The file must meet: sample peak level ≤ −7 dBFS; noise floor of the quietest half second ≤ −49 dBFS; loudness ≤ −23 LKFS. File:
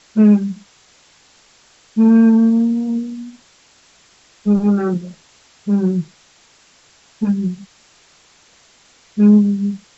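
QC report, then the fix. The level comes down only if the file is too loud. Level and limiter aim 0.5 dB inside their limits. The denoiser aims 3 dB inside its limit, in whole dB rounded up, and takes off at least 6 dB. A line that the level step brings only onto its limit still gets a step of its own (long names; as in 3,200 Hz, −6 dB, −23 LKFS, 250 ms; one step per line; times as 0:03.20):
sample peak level −3.0 dBFS: out of spec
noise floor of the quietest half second −52 dBFS: in spec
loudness −15.5 LKFS: out of spec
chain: level −8 dB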